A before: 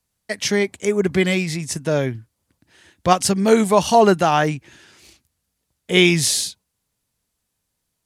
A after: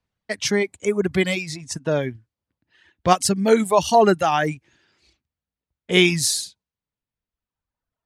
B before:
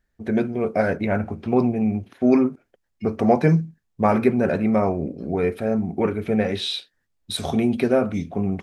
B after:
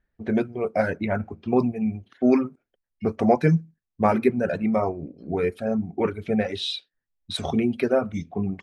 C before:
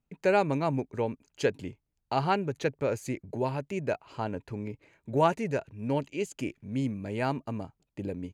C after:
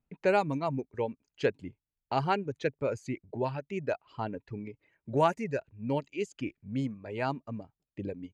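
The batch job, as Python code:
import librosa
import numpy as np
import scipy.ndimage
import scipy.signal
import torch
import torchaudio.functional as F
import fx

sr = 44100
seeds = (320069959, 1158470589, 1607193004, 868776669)

y = fx.dereverb_blind(x, sr, rt60_s=1.7)
y = fx.env_lowpass(y, sr, base_hz=3000.0, full_db=-19.5)
y = y * librosa.db_to_amplitude(-1.0)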